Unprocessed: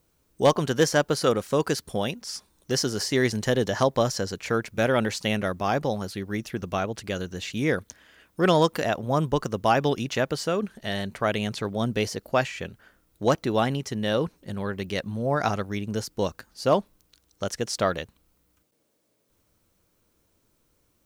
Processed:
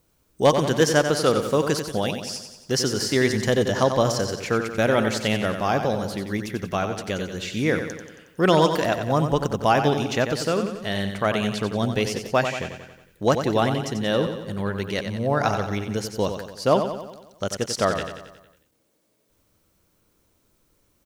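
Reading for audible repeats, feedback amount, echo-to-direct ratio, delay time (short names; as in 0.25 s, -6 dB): 6, 55%, -6.5 dB, 91 ms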